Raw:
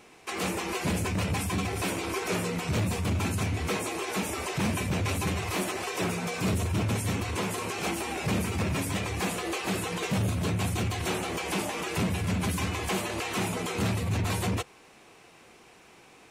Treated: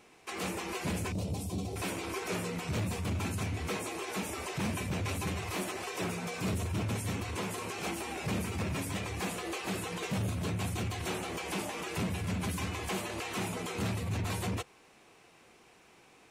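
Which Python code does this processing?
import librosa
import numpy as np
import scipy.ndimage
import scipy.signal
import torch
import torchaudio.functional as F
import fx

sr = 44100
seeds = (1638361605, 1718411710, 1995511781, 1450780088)

y = fx.curve_eq(x, sr, hz=(640.0, 1700.0, 3900.0), db=(0, -22, -3), at=(1.12, 1.76))
y = F.gain(torch.from_numpy(y), -5.5).numpy()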